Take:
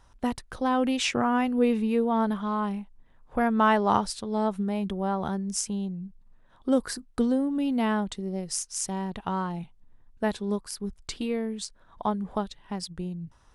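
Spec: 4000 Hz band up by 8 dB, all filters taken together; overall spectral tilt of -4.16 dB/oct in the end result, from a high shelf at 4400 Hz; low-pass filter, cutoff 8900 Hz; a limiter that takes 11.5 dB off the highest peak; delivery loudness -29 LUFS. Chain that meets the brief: LPF 8900 Hz; bell 4000 Hz +8 dB; high shelf 4400 Hz +5 dB; gain +0.5 dB; limiter -18 dBFS

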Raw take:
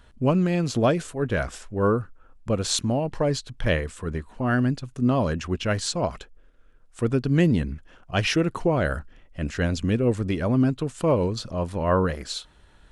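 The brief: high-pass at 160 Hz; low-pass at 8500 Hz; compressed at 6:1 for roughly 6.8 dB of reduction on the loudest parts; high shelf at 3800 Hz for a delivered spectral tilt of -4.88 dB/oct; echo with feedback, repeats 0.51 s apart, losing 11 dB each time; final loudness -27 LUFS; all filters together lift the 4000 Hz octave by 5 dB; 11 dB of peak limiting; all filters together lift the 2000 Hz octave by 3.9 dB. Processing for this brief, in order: HPF 160 Hz; LPF 8500 Hz; bell 2000 Hz +4.5 dB; high shelf 3800 Hz -5 dB; bell 4000 Hz +8 dB; compressor 6:1, threshold -23 dBFS; limiter -20 dBFS; feedback echo 0.51 s, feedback 28%, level -11 dB; gain +5 dB

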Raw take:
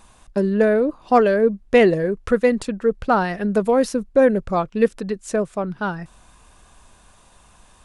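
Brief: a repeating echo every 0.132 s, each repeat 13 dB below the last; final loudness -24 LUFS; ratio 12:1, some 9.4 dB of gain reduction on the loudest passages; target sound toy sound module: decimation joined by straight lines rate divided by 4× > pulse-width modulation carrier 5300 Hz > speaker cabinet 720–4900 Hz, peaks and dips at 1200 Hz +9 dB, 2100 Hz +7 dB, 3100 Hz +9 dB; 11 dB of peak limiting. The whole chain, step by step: compressor 12:1, threshold -19 dBFS; limiter -21 dBFS; feedback echo 0.132 s, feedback 22%, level -13 dB; decimation joined by straight lines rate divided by 4×; pulse-width modulation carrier 5300 Hz; speaker cabinet 720–4900 Hz, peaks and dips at 1200 Hz +9 dB, 2100 Hz +7 dB, 3100 Hz +9 dB; gain +11 dB

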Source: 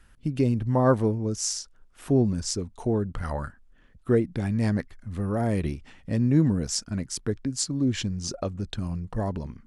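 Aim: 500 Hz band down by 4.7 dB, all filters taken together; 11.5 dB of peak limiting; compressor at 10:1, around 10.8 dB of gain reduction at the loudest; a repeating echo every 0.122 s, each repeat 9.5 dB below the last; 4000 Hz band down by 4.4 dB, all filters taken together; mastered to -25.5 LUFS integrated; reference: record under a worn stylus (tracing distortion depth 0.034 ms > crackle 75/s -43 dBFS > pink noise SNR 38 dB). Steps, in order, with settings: bell 500 Hz -6 dB; bell 4000 Hz -6.5 dB; compressor 10:1, threshold -28 dBFS; limiter -26.5 dBFS; feedback echo 0.122 s, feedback 33%, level -9.5 dB; tracing distortion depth 0.034 ms; crackle 75/s -43 dBFS; pink noise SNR 38 dB; gain +11 dB

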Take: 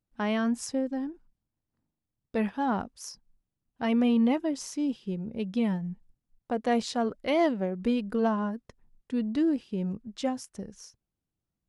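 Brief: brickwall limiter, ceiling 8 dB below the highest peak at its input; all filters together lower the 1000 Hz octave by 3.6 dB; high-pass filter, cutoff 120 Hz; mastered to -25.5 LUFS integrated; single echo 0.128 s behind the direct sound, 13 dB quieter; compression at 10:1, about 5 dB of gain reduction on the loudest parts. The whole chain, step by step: HPF 120 Hz; bell 1000 Hz -5.5 dB; compressor 10:1, threshold -26 dBFS; limiter -26 dBFS; echo 0.128 s -13 dB; gain +9.5 dB

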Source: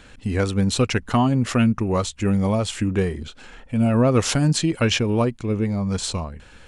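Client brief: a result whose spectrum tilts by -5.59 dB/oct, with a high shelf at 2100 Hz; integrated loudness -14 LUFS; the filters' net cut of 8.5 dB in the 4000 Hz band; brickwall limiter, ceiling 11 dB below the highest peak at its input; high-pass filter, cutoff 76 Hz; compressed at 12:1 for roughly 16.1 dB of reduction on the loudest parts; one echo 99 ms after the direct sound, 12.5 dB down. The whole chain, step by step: HPF 76 Hz; high shelf 2100 Hz -5 dB; bell 4000 Hz -6.5 dB; compressor 12:1, threshold -31 dBFS; limiter -30 dBFS; echo 99 ms -12.5 dB; gain +25.5 dB

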